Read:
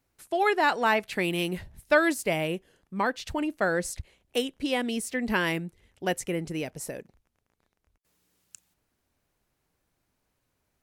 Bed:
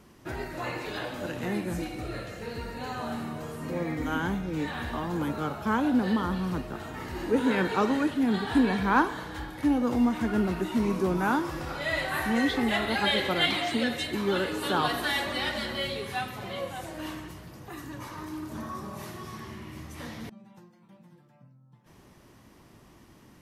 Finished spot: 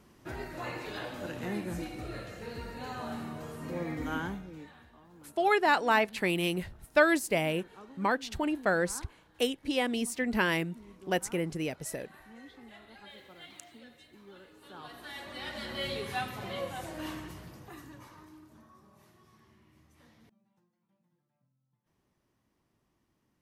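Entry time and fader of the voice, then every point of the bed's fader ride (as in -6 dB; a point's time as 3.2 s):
5.05 s, -1.5 dB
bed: 4.19 s -4.5 dB
4.92 s -25.5 dB
14.54 s -25.5 dB
15.93 s -2 dB
17.45 s -2 dB
18.68 s -21.5 dB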